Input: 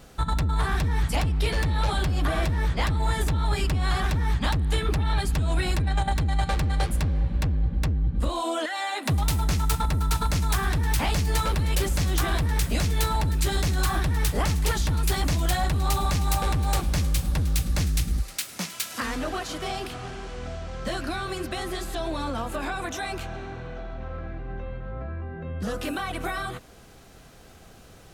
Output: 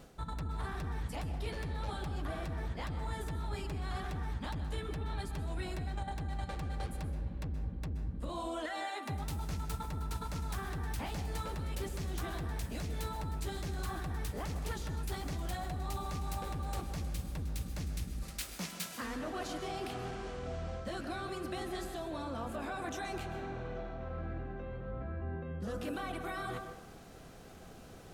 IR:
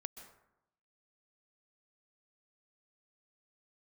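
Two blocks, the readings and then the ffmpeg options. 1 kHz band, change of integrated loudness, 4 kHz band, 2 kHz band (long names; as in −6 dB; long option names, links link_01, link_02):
−11.5 dB, −13.0 dB, −14.5 dB, −13.0 dB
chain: -filter_complex "[0:a]equalizer=frequency=330:width=0.35:gain=5,areverse,acompressor=threshold=-31dB:ratio=5,areverse[link_01];[1:a]atrim=start_sample=2205[link_02];[link_01][link_02]afir=irnorm=-1:irlink=0,volume=-2dB"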